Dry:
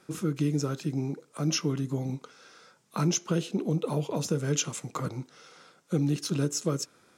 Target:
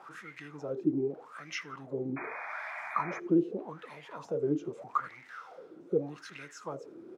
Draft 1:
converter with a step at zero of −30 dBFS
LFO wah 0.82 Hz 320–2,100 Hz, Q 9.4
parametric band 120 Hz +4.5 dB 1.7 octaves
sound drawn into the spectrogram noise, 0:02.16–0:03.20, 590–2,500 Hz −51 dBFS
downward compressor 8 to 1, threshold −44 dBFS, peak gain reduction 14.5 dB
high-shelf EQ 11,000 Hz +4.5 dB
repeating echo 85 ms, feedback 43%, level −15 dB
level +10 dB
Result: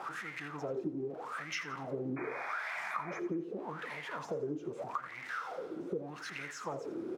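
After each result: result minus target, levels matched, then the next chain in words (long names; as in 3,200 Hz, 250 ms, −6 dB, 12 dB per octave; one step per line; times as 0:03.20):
downward compressor: peak gain reduction +14.5 dB; echo-to-direct +11.5 dB; converter with a step at zero: distortion +9 dB
converter with a step at zero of −30 dBFS
LFO wah 0.82 Hz 320–2,100 Hz, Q 9.4
parametric band 120 Hz +4.5 dB 1.7 octaves
sound drawn into the spectrogram noise, 0:02.16–0:03.20, 590–2,500 Hz −51 dBFS
high-shelf EQ 11,000 Hz +4.5 dB
repeating echo 85 ms, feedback 43%, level −26.5 dB
level +10 dB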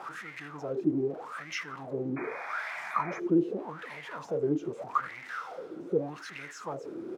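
converter with a step at zero: distortion +9 dB
converter with a step at zero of −40.5 dBFS
LFO wah 0.82 Hz 320–2,100 Hz, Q 9.4
parametric band 120 Hz +4.5 dB 1.7 octaves
sound drawn into the spectrogram noise, 0:02.16–0:03.20, 590–2,500 Hz −51 dBFS
high-shelf EQ 11,000 Hz +4.5 dB
repeating echo 85 ms, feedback 43%, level −26.5 dB
level +10 dB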